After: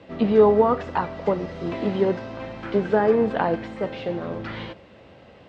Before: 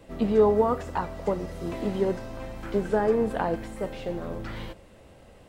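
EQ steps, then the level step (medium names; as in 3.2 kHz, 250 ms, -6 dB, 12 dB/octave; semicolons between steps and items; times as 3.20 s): band-pass 100–4100 Hz; distance through air 120 m; treble shelf 2.7 kHz +8.5 dB; +4.5 dB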